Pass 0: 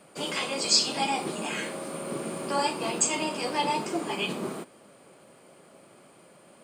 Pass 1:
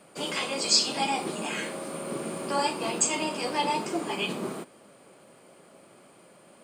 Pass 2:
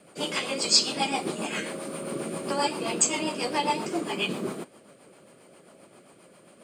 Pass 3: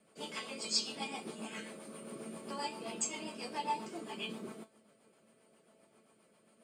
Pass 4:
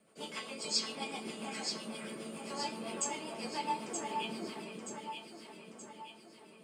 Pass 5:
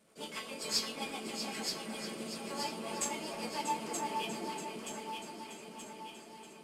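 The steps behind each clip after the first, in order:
notches 50/100/150 Hz
rotary speaker horn 7.5 Hz; gain +3 dB
resonator 220 Hz, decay 0.17 s, harmonics all, mix 80%; gain -5 dB
echo with dull and thin repeats by turns 0.463 s, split 2100 Hz, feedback 70%, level -2.5 dB
CVSD 64 kbps; echo with dull and thin repeats by turns 0.32 s, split 2300 Hz, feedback 74%, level -6.5 dB

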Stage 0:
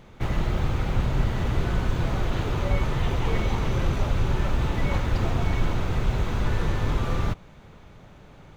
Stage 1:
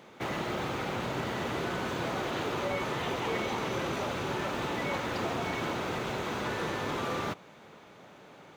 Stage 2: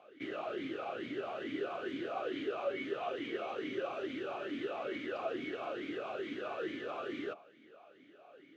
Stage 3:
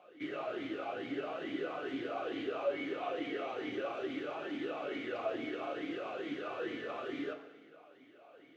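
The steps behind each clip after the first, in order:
HPF 270 Hz 12 dB/oct; in parallel at 0 dB: limiter -26 dBFS, peak gain reduction 7 dB; on the sum: gain -5 dB
on a send at -12 dB: reverb RT60 0.35 s, pre-delay 3 ms; on the sum: vowel sweep a-i 2.3 Hz; gain +4 dB
flange 0.66 Hz, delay 5.3 ms, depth 3.9 ms, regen +54%; FDN reverb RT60 1.2 s, low-frequency decay 0.8×, high-frequency decay 0.95×, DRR 7.5 dB; gain +3.5 dB

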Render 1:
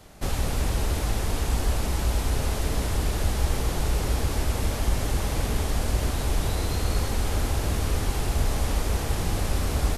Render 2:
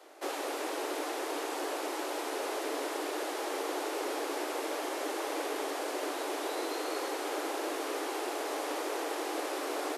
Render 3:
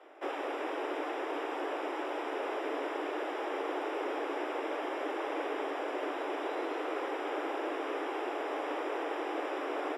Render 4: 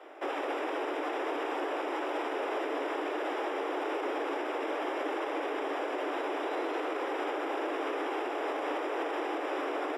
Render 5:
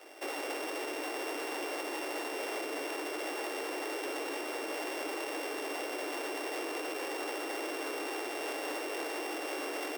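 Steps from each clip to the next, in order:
steep high-pass 290 Hz 96 dB/oct; high shelf 2800 Hz -8.5 dB
polynomial smoothing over 25 samples
limiter -30.5 dBFS, peak gain reduction 7.5 dB; gain +5.5 dB
sample sorter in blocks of 16 samples; core saturation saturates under 630 Hz; gain -2.5 dB

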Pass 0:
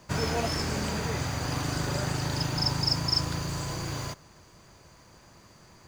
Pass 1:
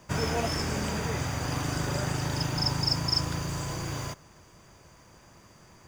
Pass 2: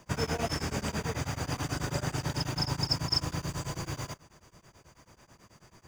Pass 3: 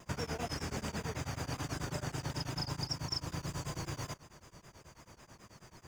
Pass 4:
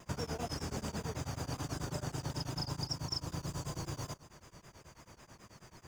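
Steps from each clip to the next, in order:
notch 4200 Hz, Q 5.8
beating tremolo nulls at 9.2 Hz
compressor 2.5:1, threshold -39 dBFS, peak gain reduction 11 dB; shaped vibrato saw down 5.2 Hz, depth 100 cents; gain +1 dB
dynamic EQ 2100 Hz, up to -6 dB, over -60 dBFS, Q 1.2

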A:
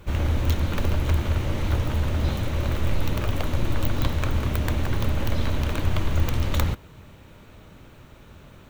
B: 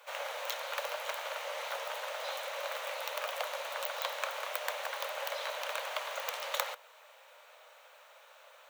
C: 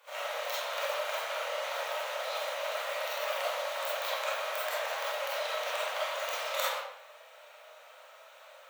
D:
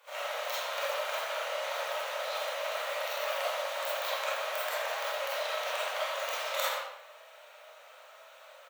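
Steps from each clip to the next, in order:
steep high-pass 510 Hz 72 dB/oct; gain -2.5 dB
reverb RT60 0.75 s, pre-delay 5 ms, DRR -8.5 dB; gain -5.5 dB
echo 80 ms -10.5 dB

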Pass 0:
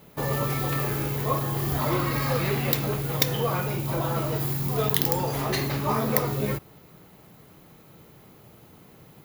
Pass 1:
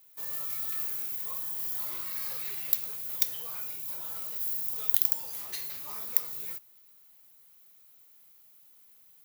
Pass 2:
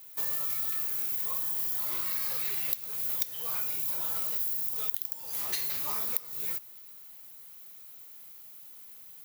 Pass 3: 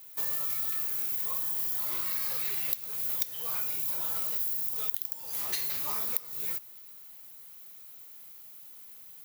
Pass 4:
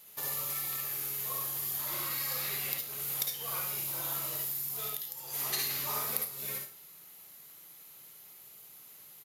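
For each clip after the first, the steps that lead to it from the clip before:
pre-emphasis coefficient 0.97; gain -4.5 dB
compressor 16:1, threshold -36 dBFS, peak gain reduction 20 dB; gain +9 dB
nothing audible
reverb RT60 0.35 s, pre-delay 51 ms, DRR 0.5 dB; downsampling 32000 Hz

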